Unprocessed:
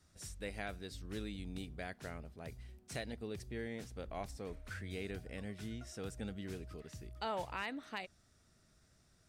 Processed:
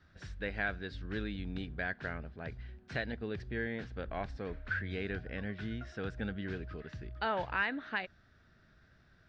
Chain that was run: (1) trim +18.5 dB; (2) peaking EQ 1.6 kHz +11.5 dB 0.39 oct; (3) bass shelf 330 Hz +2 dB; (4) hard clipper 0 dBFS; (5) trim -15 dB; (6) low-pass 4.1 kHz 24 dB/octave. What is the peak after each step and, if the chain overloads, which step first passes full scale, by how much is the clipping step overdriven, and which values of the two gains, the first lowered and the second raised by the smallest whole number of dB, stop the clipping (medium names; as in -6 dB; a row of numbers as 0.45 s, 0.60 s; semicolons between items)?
-9.5 dBFS, -5.0 dBFS, -5.0 dBFS, -5.0 dBFS, -20.0 dBFS, -20.0 dBFS; nothing clips